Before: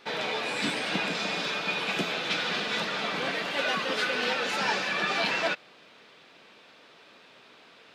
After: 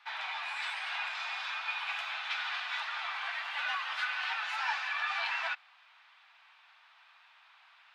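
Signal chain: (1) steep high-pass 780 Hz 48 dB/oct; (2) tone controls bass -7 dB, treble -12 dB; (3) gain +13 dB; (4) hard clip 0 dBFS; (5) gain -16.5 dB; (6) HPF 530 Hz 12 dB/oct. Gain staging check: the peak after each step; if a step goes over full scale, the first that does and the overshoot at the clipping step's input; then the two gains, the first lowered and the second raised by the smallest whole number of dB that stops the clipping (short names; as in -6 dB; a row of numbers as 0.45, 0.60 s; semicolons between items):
-13.5, -16.0, -3.0, -3.0, -19.5, -20.0 dBFS; no overload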